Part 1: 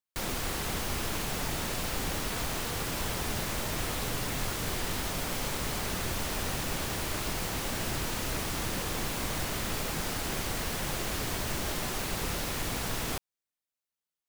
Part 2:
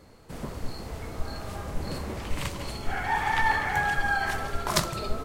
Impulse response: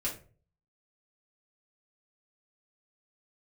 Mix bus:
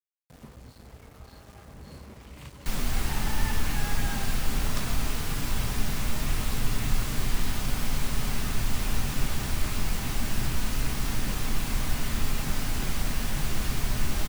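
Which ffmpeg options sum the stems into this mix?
-filter_complex "[0:a]equalizer=frequency=500:width_type=o:width=0.78:gain=-6.5,adelay=2500,volume=-4.5dB,asplit=2[link_01][link_02];[link_02]volume=-4.5dB[link_03];[1:a]highpass=frequency=44:width=0.5412,highpass=frequency=44:width=1.3066,volume=-17dB,asplit=2[link_04][link_05];[link_05]volume=-8.5dB[link_06];[2:a]atrim=start_sample=2205[link_07];[link_03][link_06]amix=inputs=2:normalize=0[link_08];[link_08][link_07]afir=irnorm=-1:irlink=0[link_09];[link_01][link_04][link_09]amix=inputs=3:normalize=0,lowshelf=frequency=150:gain=9.5,aeval=exprs='val(0)*gte(abs(val(0)),0.00355)':channel_layout=same"

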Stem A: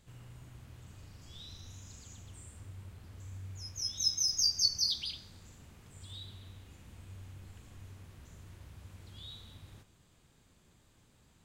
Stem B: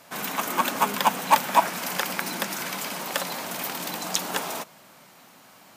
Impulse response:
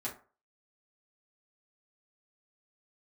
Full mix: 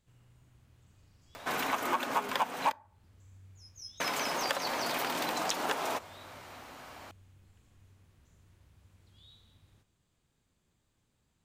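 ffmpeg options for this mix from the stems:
-filter_complex "[0:a]volume=-10.5dB[link_01];[1:a]lowpass=frequency=2900:poles=1,equalizer=frequency=190:width=2.9:gain=-12.5,acompressor=mode=upward:threshold=-47dB:ratio=2.5,adelay=1350,volume=3dB,asplit=3[link_02][link_03][link_04];[link_02]atrim=end=2.72,asetpts=PTS-STARTPTS,afade=type=out:start_time=2.716:duration=0.004:curve=hsin[link_05];[link_03]atrim=start=2.72:end=4,asetpts=PTS-STARTPTS,volume=0[link_06];[link_04]atrim=start=4,asetpts=PTS-STARTPTS,afade=type=in:duration=0.004:curve=hsin[link_07];[link_05][link_06][link_07]concat=n=3:v=0:a=1,asplit=2[link_08][link_09];[link_09]volume=-20dB[link_10];[2:a]atrim=start_sample=2205[link_11];[link_10][link_11]afir=irnorm=-1:irlink=0[link_12];[link_01][link_08][link_12]amix=inputs=3:normalize=0,acompressor=threshold=-29dB:ratio=4"

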